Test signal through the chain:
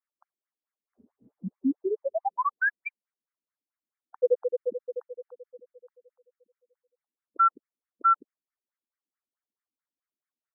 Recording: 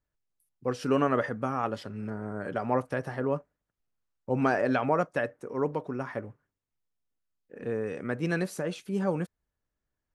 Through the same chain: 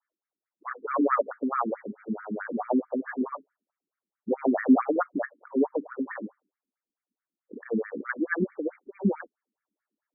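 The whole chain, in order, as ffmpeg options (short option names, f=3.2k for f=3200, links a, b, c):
-af "asubboost=boost=7:cutoff=170,afftfilt=real='re*between(b*sr/1024,270*pow(1700/270,0.5+0.5*sin(2*PI*4.6*pts/sr))/1.41,270*pow(1700/270,0.5+0.5*sin(2*PI*4.6*pts/sr))*1.41)':imag='im*between(b*sr/1024,270*pow(1700/270,0.5+0.5*sin(2*PI*4.6*pts/sr))/1.41,270*pow(1700/270,0.5+0.5*sin(2*PI*4.6*pts/sr))*1.41)':win_size=1024:overlap=0.75,volume=8.5dB"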